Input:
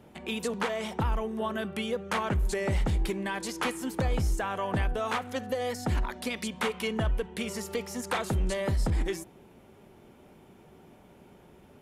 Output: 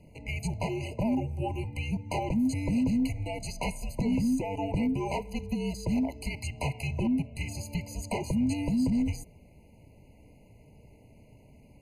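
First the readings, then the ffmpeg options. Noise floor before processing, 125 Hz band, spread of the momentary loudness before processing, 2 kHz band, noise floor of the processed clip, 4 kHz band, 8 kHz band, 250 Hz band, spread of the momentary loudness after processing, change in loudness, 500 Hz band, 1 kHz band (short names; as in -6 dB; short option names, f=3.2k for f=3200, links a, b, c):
-56 dBFS, 0.0 dB, 5 LU, -6.0 dB, -56 dBFS, -6.0 dB, -3.0 dB, +6.5 dB, 8 LU, +0.5 dB, -5.0 dB, -4.5 dB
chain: -af "afreqshift=-300,volume=21dB,asoftclip=hard,volume=-21dB,afftfilt=real='re*eq(mod(floor(b*sr/1024/1000),2),0)':imag='im*eq(mod(floor(b*sr/1024/1000),2),0)':win_size=1024:overlap=0.75"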